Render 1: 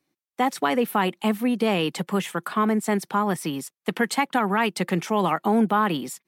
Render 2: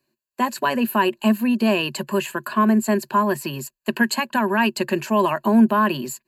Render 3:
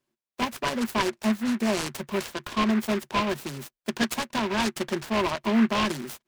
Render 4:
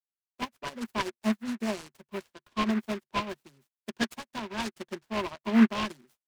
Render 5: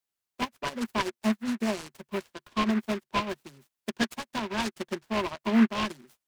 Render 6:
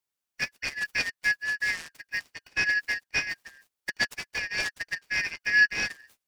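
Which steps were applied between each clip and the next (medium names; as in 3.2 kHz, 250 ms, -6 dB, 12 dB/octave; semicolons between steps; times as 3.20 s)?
rippled EQ curve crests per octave 1.4, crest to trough 15 dB
delay time shaken by noise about 1.5 kHz, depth 0.11 ms; trim -6.5 dB
upward expansion 2.5:1, over -45 dBFS; trim +3 dB
compression 1.5:1, threshold -42 dBFS, peak gain reduction 10 dB; trim +8 dB
four frequency bands reordered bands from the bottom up 3142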